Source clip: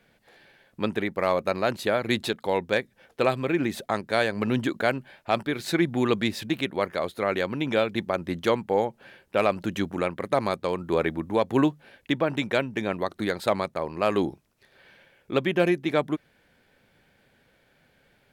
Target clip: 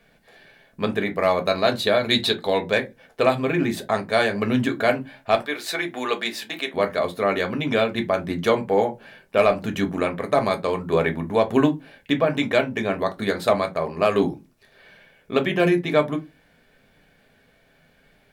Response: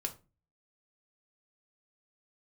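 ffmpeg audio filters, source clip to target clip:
-filter_complex "[0:a]asettb=1/sr,asplit=3[a][b][c];[a]atrim=end=1.474[d];[b]atrim=start=1.47:end=2.71,asetpts=PTS-STARTPTS,afade=t=in:d=0.004:c=qsin,afade=t=out:st=1.236:d=0.004:c=qsin,equalizer=f=3.9k:w=3.9:g=10[e];[c]atrim=start=2.706[f];[d][e]acrossfade=d=0.004:c1=hsin:c2=qsin[g];[g][f]acrossfade=d=0.004:c1=qsin:c2=hsin,asettb=1/sr,asplit=3[h][i][j];[h]atrim=end=5.354[k];[i]atrim=start=5.35:end=6.74,asetpts=PTS-STARTPTS,afade=t=in:d=0.004:c=qsin,afade=t=out:st=1.386:d=0.004:c=qsin,highpass=500[l];[j]atrim=start=6.736[m];[k][l]acrossfade=d=0.004:c1=hsin:c2=qsin[n];[n][m]acrossfade=d=0.004:c1=qsin:c2=hsin[o];[1:a]atrim=start_sample=2205,asetrate=70560,aresample=44100[p];[o][p]afir=irnorm=-1:irlink=0,volume=7.5dB"

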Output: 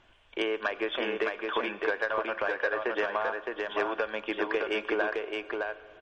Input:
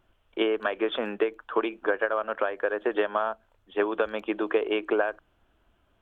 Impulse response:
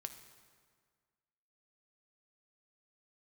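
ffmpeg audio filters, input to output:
-filter_complex "[0:a]acrossover=split=3300[a][b];[b]acompressor=threshold=-55dB:ratio=4:attack=1:release=60[c];[a][c]amix=inputs=2:normalize=0,equalizer=f=2.4k:w=0.37:g=8.5,bandreject=f=1.3k:w=7.3,acompressor=threshold=-46dB:ratio=1.5,asoftclip=type=tanh:threshold=-20.5dB,aeval=exprs='0.0891*(cos(1*acos(clip(val(0)/0.0891,-1,1)))-cos(1*PI/2))+0.002*(cos(6*acos(clip(val(0)/0.0891,-1,1)))-cos(6*PI/2))+0.00141*(cos(8*acos(clip(val(0)/0.0891,-1,1)))-cos(8*PI/2))':c=same,aecho=1:1:614:0.668,asplit=2[d][e];[1:a]atrim=start_sample=2205,asetrate=26460,aresample=44100,lowshelf=f=280:g=-9[f];[e][f]afir=irnorm=-1:irlink=0,volume=-2.5dB[g];[d][g]amix=inputs=2:normalize=0" -ar 44100 -c:a libmp3lame -b:a 40k

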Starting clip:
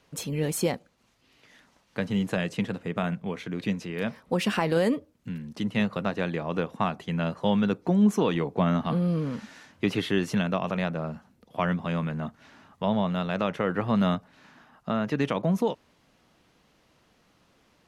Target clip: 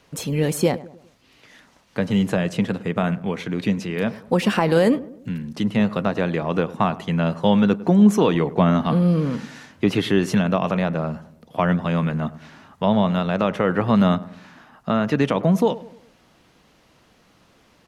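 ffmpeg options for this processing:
-filter_complex "[0:a]acrossover=split=1300[a][b];[b]alimiter=level_in=2.5dB:limit=-24dB:level=0:latency=1:release=87,volume=-2.5dB[c];[a][c]amix=inputs=2:normalize=0,asplit=2[d][e];[e]adelay=102,lowpass=f=1.3k:p=1,volume=-17dB,asplit=2[f][g];[g]adelay=102,lowpass=f=1.3k:p=1,volume=0.48,asplit=2[h][i];[i]adelay=102,lowpass=f=1.3k:p=1,volume=0.48,asplit=2[j][k];[k]adelay=102,lowpass=f=1.3k:p=1,volume=0.48[l];[d][f][h][j][l]amix=inputs=5:normalize=0,volume=7dB"

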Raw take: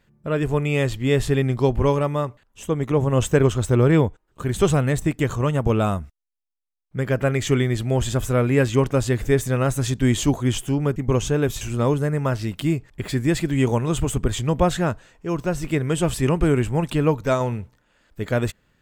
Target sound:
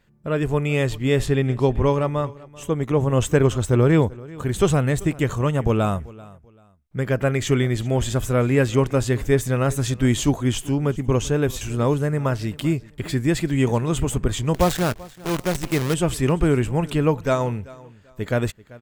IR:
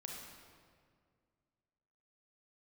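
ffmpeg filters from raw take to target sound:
-filter_complex "[0:a]asettb=1/sr,asplit=3[a][b][c];[a]atrim=end=1.264[d];[b]atrim=start=1.26:end=2.27,asetpts=PTS-STARTPTS,afade=t=in:d=0.004:c=qsin,afade=t=out:st=1.006:d=0.004:c=qsin,highshelf=f=9.4k:g=-9.5[e];[c]atrim=start=2.266[f];[d][e]acrossfade=d=0.004:c1=hsin:c2=qsin[g];[g][f]acrossfade=d=0.004:c1=qsin:c2=hsin,asettb=1/sr,asplit=3[h][i][j];[h]atrim=end=14.544[k];[i]atrim=start=14.54:end=15.94,asetpts=PTS-STARTPTS,afade=t=in:d=0.004:c=qsin,afade=t=out:st=1.396:d=0.004:c=qsin,acrusher=bits=5:dc=4:mix=0:aa=0.000001[l];[j]atrim=start=15.936[m];[k][l]acrossfade=d=0.004:c1=hsin:c2=qsin[n];[n][m]acrossfade=d=0.004:c1=qsin:c2=hsin,aecho=1:1:388|776:0.0891|0.0232"

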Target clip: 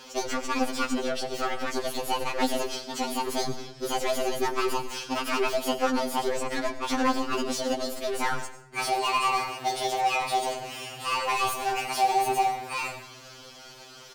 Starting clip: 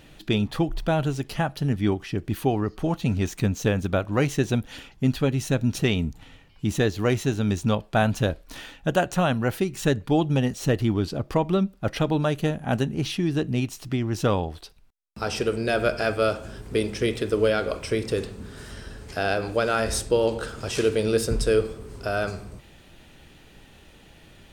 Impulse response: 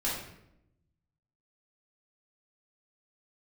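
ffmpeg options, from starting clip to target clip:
-filter_complex "[0:a]asplit=2[a][b];[b]highpass=f=720:p=1,volume=26dB,asoftclip=type=tanh:threshold=-9dB[c];[a][c]amix=inputs=2:normalize=0,lowpass=f=2.6k:p=1,volume=-6dB,asetrate=76440,aresample=44100,asplit=2[d][e];[1:a]atrim=start_sample=2205,adelay=86[f];[e][f]afir=irnorm=-1:irlink=0,volume=-17.5dB[g];[d][g]amix=inputs=2:normalize=0,afftfilt=real='re*2.45*eq(mod(b,6),0)':imag='im*2.45*eq(mod(b,6),0)':win_size=2048:overlap=0.75,volume=-7.5dB"

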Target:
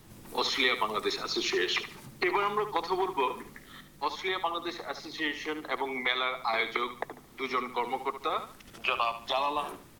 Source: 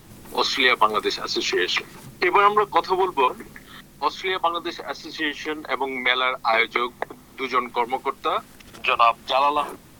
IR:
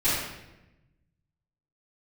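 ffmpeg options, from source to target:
-filter_complex "[0:a]acrossover=split=360|3000[a][b][c];[b]acompressor=threshold=-20dB:ratio=6[d];[a][d][c]amix=inputs=3:normalize=0,asplit=2[e][f];[f]aecho=0:1:73|146|219:0.266|0.0851|0.0272[g];[e][g]amix=inputs=2:normalize=0,volume=-6.5dB"

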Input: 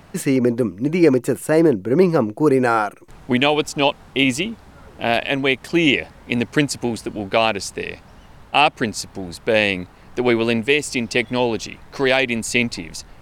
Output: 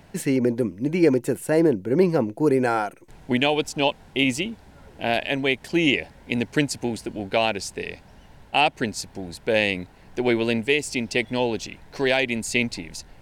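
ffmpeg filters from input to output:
-af "equalizer=f=1.2k:w=7.8:g=-14,volume=-4dB"

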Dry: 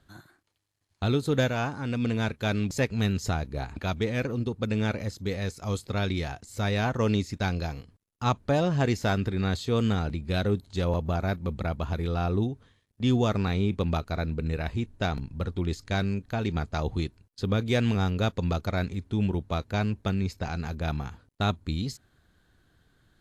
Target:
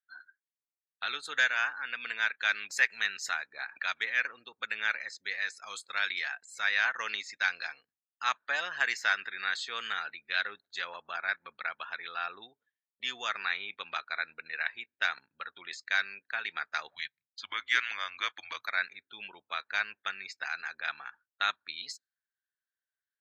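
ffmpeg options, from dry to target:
-filter_complex "[0:a]asplit=3[a][b][c];[a]afade=t=out:st=16.9:d=0.02[d];[b]afreqshift=-190,afade=t=in:st=16.9:d=0.02,afade=t=out:st=18.66:d=0.02[e];[c]afade=t=in:st=18.66:d=0.02[f];[d][e][f]amix=inputs=3:normalize=0,afftdn=nr=33:nf=-49,highpass=f=1.7k:t=q:w=3.4"

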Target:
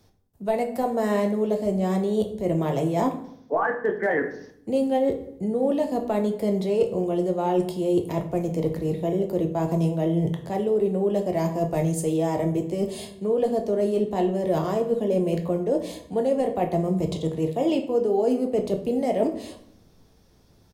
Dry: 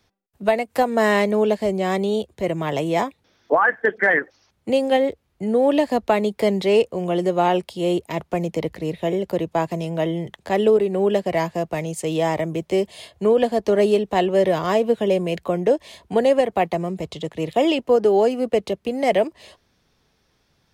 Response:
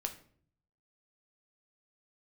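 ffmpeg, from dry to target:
-filter_complex "[0:a]equalizer=f=2.2k:w=0.48:g=-12,areverse,acompressor=threshold=-30dB:ratio=6,areverse,asplit=2[a][b];[b]adelay=256.6,volume=-29dB,highshelf=f=4k:g=-5.77[c];[a][c]amix=inputs=2:normalize=0[d];[1:a]atrim=start_sample=2205,asetrate=33957,aresample=44100[e];[d][e]afir=irnorm=-1:irlink=0,volume=7.5dB"

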